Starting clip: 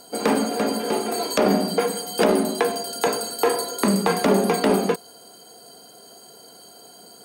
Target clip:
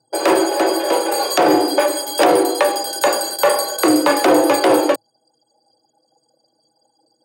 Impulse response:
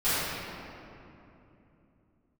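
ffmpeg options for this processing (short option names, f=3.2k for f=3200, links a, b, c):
-af "apsyclip=12.5dB,anlmdn=1580,afreqshift=110,volume=-6dB"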